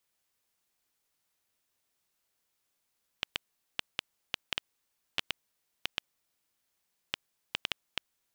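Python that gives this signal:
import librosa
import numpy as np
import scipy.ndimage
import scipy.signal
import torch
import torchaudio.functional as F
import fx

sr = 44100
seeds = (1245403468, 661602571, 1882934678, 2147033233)

y = fx.geiger_clicks(sr, seeds[0], length_s=5.06, per_s=3.4, level_db=-11.0)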